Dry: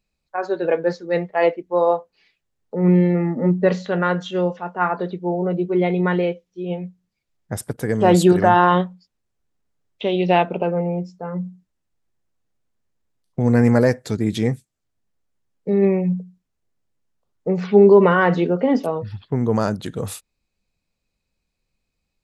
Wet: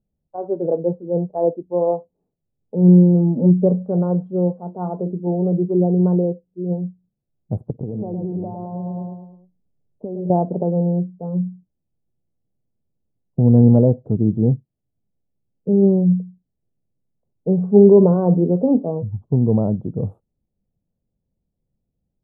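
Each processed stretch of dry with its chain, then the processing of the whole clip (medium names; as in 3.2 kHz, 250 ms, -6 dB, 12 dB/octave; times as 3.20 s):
4.56–5.27 s: boxcar filter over 6 samples + hum notches 50/100/150/200/250/300/350 Hz
7.70–10.30 s: Savitzky-Golay filter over 65 samples + feedback delay 106 ms, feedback 48%, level -6.5 dB + compression 12:1, threshold -25 dBFS
whole clip: inverse Chebyshev low-pass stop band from 1.9 kHz, stop band 50 dB; peaking EQ 140 Hz +8.5 dB 1.9 oct; trim -2 dB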